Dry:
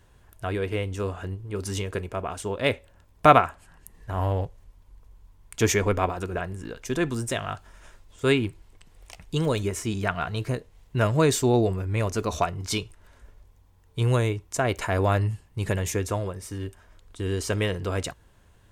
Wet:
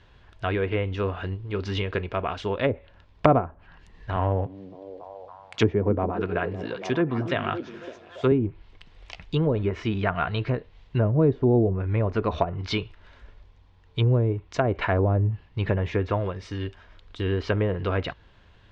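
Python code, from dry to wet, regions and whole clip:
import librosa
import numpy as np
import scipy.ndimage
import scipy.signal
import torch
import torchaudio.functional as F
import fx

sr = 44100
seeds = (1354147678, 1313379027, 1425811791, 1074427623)

y = fx.chain(x, sr, fx.highpass(hz=88.0, slope=24),
    fx.echo_stepped(ms=280, hz=240.0, octaves=0.7, feedback_pct=70, wet_db=-7.0), at=(4.16, 8.32))
y = fx.env_lowpass_down(y, sr, base_hz=490.0, full_db=-19.0)
y = scipy.signal.sosfilt(scipy.signal.butter(4, 4100.0, 'lowpass', fs=sr, output='sos'), y)
y = fx.high_shelf(y, sr, hz=2100.0, db=8.5)
y = F.gain(torch.from_numpy(y), 2.0).numpy()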